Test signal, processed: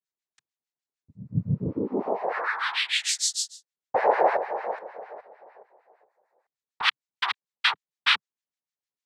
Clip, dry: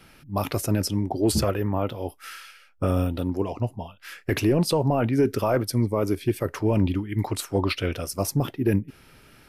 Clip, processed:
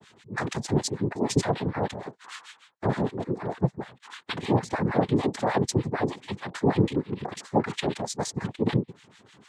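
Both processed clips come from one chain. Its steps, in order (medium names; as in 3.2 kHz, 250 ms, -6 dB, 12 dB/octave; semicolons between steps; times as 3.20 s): noise-vocoded speech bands 6; harmonic tremolo 6.6 Hz, depth 100%, crossover 1.1 kHz; trim +3.5 dB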